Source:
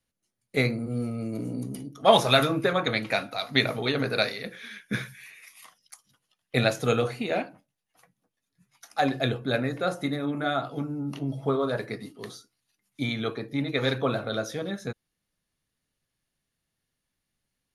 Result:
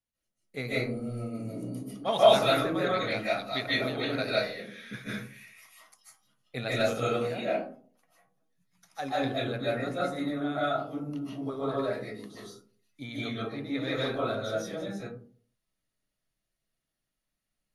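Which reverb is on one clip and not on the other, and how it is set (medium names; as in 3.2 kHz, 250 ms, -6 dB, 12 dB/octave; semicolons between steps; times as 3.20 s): algorithmic reverb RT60 0.48 s, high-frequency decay 0.35×, pre-delay 110 ms, DRR -8 dB; trim -12 dB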